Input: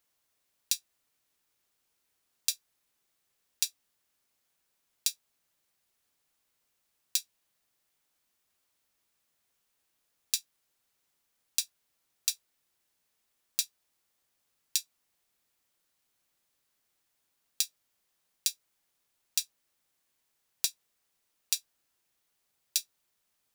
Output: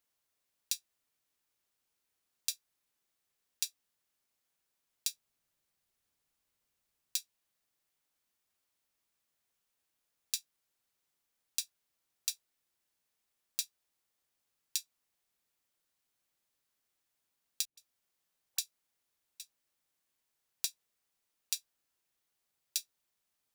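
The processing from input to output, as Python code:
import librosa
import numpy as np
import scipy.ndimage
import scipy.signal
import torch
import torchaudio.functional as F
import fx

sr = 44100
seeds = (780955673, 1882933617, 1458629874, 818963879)

y = fx.low_shelf(x, sr, hz=190.0, db=7.0, at=(5.08, 7.17))
y = fx.dispersion(y, sr, late='highs', ms=124.0, hz=400.0, at=(17.65, 19.4))
y = y * librosa.db_to_amplitude(-5.5)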